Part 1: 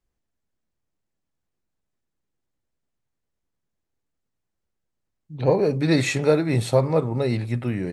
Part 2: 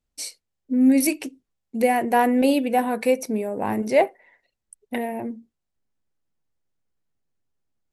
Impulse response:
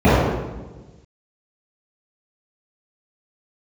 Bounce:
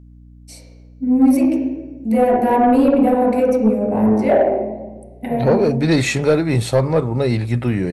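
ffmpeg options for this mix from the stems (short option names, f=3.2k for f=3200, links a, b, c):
-filter_complex "[0:a]volume=3dB[a];[1:a]adelay=300,volume=-9dB,asplit=2[b][c];[c]volume=-20dB[d];[2:a]atrim=start_sample=2205[e];[d][e]afir=irnorm=-1:irlink=0[f];[a][b][f]amix=inputs=3:normalize=0,dynaudnorm=f=200:g=7:m=11.5dB,asoftclip=type=tanh:threshold=-6dB,aeval=exprs='val(0)+0.00891*(sin(2*PI*60*n/s)+sin(2*PI*2*60*n/s)/2+sin(2*PI*3*60*n/s)/3+sin(2*PI*4*60*n/s)/4+sin(2*PI*5*60*n/s)/5)':c=same"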